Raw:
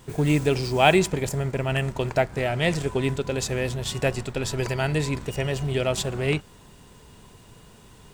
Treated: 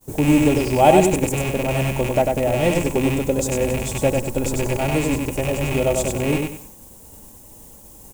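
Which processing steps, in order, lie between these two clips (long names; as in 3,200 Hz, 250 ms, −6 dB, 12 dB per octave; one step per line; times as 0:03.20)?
loose part that buzzes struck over −27 dBFS, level −11 dBFS
in parallel at −8 dB: bit-depth reduction 6 bits, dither triangular
on the sum: flat-topped bell 2,500 Hz −13.5 dB 2.4 octaves
repeating echo 97 ms, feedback 28%, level −4 dB
downward expander −36 dBFS
comb filter 3.6 ms, depth 43%
level +2 dB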